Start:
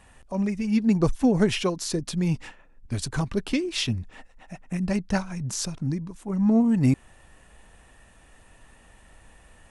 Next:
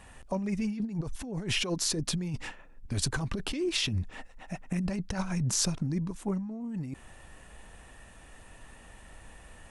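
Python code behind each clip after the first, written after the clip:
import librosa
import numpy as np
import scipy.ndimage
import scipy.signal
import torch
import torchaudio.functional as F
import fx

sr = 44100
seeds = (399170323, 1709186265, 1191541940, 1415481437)

y = fx.over_compress(x, sr, threshold_db=-29.0, ratio=-1.0)
y = y * 10.0 ** (-2.5 / 20.0)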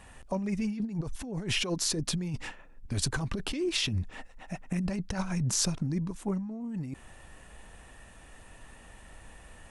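y = x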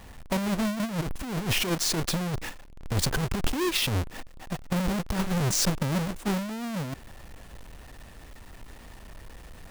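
y = fx.halfwave_hold(x, sr)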